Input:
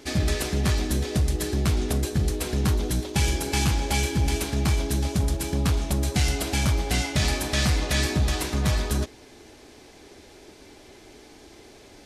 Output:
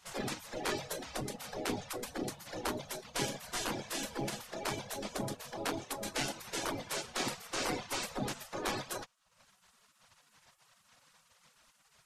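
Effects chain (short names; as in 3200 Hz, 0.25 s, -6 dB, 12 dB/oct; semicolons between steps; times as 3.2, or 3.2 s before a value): reverb removal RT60 0.82 s; spectral gate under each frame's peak -20 dB weak; tilt shelf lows +6 dB, about 1400 Hz; gain -1.5 dB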